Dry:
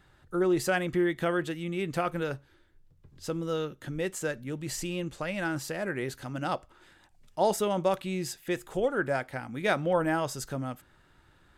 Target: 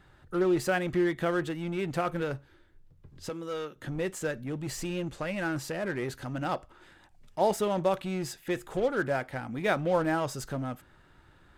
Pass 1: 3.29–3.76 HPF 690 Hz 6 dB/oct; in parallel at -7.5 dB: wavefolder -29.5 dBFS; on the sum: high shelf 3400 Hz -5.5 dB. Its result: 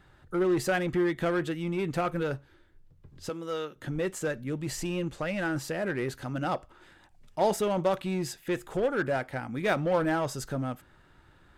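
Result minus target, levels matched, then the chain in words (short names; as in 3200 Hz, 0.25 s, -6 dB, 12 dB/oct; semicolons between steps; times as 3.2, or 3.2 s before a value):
wavefolder: distortion -11 dB
3.29–3.76 HPF 690 Hz 6 dB/oct; in parallel at -7.5 dB: wavefolder -36 dBFS; on the sum: high shelf 3400 Hz -5.5 dB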